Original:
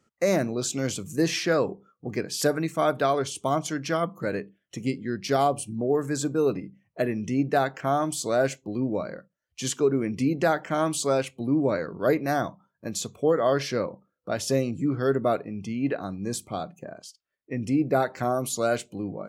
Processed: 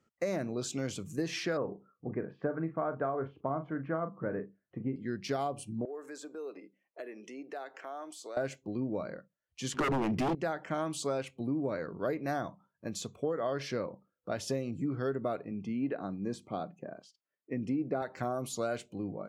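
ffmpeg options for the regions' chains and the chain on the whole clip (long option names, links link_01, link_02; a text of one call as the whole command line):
ffmpeg -i in.wav -filter_complex "[0:a]asettb=1/sr,asplit=3[link_01][link_02][link_03];[link_01]atrim=end=1.574[link_04];[link_02]atrim=start=1.57:end=4.96,asetpts=PTS-STARTPTS,afade=type=in:duration=0.004:curve=qsin,afade=type=out:start_time=3.386:duration=0.004:curve=qsin,lowpass=frequency=1600:width=0.5412,lowpass=frequency=1600:width=1.3066,asplit=2[link_05][link_06];[link_06]adelay=37,volume=-11dB[link_07];[link_05][link_07]amix=inputs=2:normalize=0,atrim=end_sample=149499[link_08];[link_03]atrim=start=4.956[link_09];[link_04][link_08]acrossfade=duration=0.004:curve1=hsin:curve2=qsin[link_10];[link_10][link_09]acrossfade=duration=0.004:curve1=qsin:curve2=hsin,asettb=1/sr,asplit=3[link_11][link_12][link_13];[link_11]atrim=end=5.854[link_14];[link_12]atrim=start=5.85:end=8.37,asetpts=PTS-STARTPTS,afade=type=in:duration=0.004:curve=qsin,afade=type=out:start_time=2.516:duration=0.004:curve=qsin,highpass=frequency=340:width=0.5412,highpass=frequency=340:width=1.3066,acompressor=threshold=-39dB:ratio=2.5:attack=3.2:release=140:knee=1:detection=peak[link_15];[link_13]atrim=start=8.366[link_16];[link_14][link_15]acrossfade=duration=0.004:curve1=hsin:curve2=qsin[link_17];[link_17][link_16]acrossfade=duration=0.004:curve1=qsin:curve2=hsin,asettb=1/sr,asplit=3[link_18][link_19][link_20];[link_18]atrim=end=9.744[link_21];[link_19]atrim=start=9.74:end=10.35,asetpts=PTS-STARTPTS,afade=type=in:duration=0.004:curve=qsin,afade=type=out:start_time=0.606:duration=0.004:curve=qsin,aeval=exprs='0.237*sin(PI/2*3.98*val(0)/0.237)':channel_layout=same,adynamicsmooth=sensitivity=4.5:basefreq=540[link_22];[link_20]atrim=start=10.346[link_23];[link_21][link_22]acrossfade=duration=0.004:curve1=hsin:curve2=qsin[link_24];[link_24][link_23]acrossfade=duration=0.004:curve1=qsin:curve2=hsin,asettb=1/sr,asplit=3[link_25][link_26][link_27];[link_25]atrim=end=15.514[link_28];[link_26]atrim=start=15.51:end=18.02,asetpts=PTS-STARTPTS,afade=type=in:duration=0.004:curve=qsin,afade=type=out:start_time=2.506:duration=0.004:curve=qsin,highpass=230,aemphasis=mode=reproduction:type=bsi[link_29];[link_27]atrim=start=18.016[link_30];[link_28][link_29]acrossfade=duration=0.004:curve1=hsin:curve2=qsin[link_31];[link_31][link_30]acrossfade=duration=0.004:curve1=qsin:curve2=hsin,highshelf=frequency=6400:gain=-9,acompressor=threshold=-24dB:ratio=6,volume=-5dB" out.wav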